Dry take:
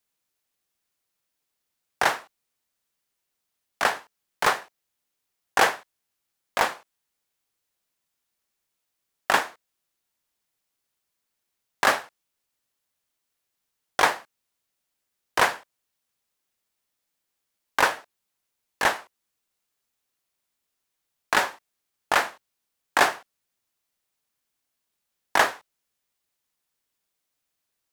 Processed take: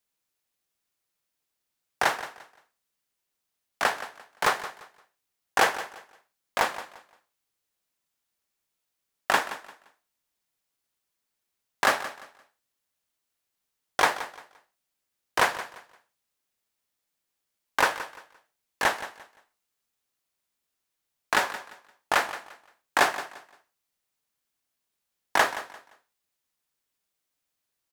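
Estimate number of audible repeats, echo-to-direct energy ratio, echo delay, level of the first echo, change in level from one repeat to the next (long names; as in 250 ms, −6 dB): 2, −13.5 dB, 173 ms, −14.0 dB, −11.5 dB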